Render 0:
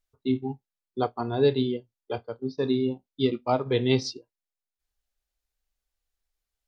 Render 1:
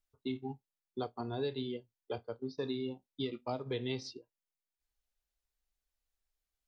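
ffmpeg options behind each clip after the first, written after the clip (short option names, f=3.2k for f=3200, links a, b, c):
-filter_complex "[0:a]acrossover=split=640|3700[a][b][c];[a]acompressor=threshold=-32dB:ratio=4[d];[b]acompressor=threshold=-40dB:ratio=4[e];[c]acompressor=threshold=-46dB:ratio=4[f];[d][e][f]amix=inputs=3:normalize=0,volume=-4.5dB"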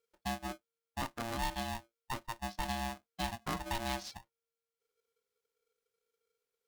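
-af "aeval=exprs='val(0)*sgn(sin(2*PI*460*n/s))':c=same"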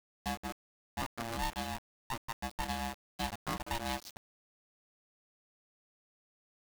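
-af "aeval=exprs='val(0)*gte(abs(val(0)),0.00891)':c=same"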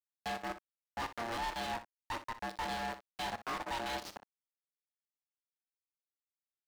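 -filter_complex "[0:a]highpass=270,asplit=2[a][b];[b]highpass=f=720:p=1,volume=32dB,asoftclip=type=tanh:threshold=-21dB[c];[a][c]amix=inputs=2:normalize=0,lowpass=f=3.5k:p=1,volume=-6dB,aecho=1:1:30|61:0.126|0.224,volume=-8.5dB"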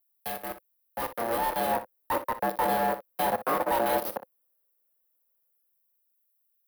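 -filter_complex "[0:a]equalizer=f=520:w=4.1:g=12,acrossover=split=130|1600|3500[a][b][c][d];[b]dynaudnorm=f=200:g=13:m=11.5dB[e];[a][e][c][d]amix=inputs=4:normalize=0,aexciter=amount=8.6:drive=8.9:freq=10k"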